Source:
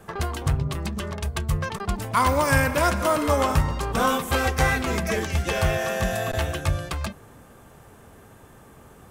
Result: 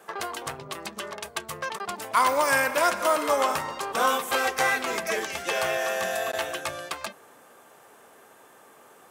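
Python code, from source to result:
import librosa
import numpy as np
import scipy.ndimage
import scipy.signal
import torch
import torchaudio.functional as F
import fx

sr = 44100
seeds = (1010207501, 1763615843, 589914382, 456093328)

y = scipy.signal.sosfilt(scipy.signal.butter(2, 450.0, 'highpass', fs=sr, output='sos'), x)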